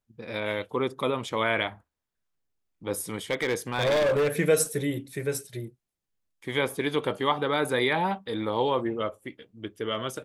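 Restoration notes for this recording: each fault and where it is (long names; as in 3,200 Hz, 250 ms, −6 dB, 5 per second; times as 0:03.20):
0:03.31–0:04.28: clipping −20.5 dBFS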